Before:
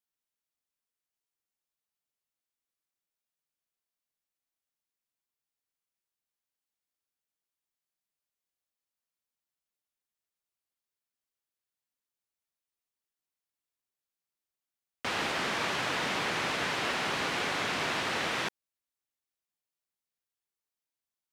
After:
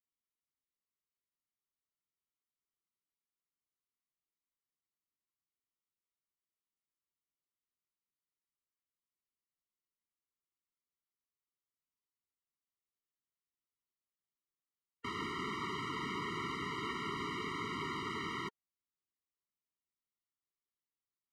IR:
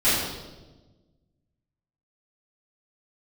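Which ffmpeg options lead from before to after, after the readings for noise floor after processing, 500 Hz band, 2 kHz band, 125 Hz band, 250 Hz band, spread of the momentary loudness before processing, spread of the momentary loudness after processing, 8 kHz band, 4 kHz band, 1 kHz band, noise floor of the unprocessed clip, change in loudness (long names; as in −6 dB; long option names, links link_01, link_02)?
below −85 dBFS, −9.0 dB, −11.0 dB, −3.0 dB, −3.0 dB, 3 LU, 3 LU, −15.0 dB, −11.5 dB, −6.5 dB, below −85 dBFS, −9.0 dB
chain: -af "highshelf=frequency=3200:gain=-11.5,afftfilt=real='re*eq(mod(floor(b*sr/1024/460),2),0)':imag='im*eq(mod(floor(b*sr/1024/460),2),0)':win_size=1024:overlap=0.75,volume=-3dB"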